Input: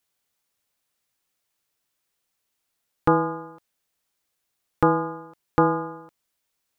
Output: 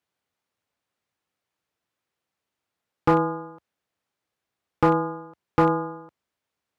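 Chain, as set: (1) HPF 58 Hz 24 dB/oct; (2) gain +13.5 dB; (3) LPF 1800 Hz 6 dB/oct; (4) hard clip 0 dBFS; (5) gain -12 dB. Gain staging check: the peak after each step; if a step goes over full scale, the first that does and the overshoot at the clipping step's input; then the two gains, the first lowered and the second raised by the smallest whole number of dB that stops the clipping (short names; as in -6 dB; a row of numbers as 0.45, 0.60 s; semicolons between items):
-6.0, +7.5, +6.5, 0.0, -12.0 dBFS; step 2, 6.5 dB; step 2 +6.5 dB, step 5 -5 dB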